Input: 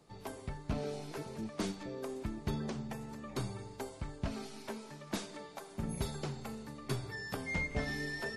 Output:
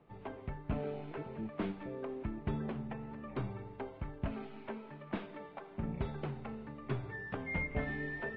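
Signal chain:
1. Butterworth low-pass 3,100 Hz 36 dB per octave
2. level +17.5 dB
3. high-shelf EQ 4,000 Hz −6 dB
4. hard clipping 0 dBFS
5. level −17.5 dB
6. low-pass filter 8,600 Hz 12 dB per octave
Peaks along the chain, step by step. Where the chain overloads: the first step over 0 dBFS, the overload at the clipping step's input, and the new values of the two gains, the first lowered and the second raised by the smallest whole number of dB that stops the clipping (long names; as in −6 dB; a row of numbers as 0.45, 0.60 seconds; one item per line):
−22.5, −5.0, −5.0, −5.0, −22.5, −22.5 dBFS
no step passes full scale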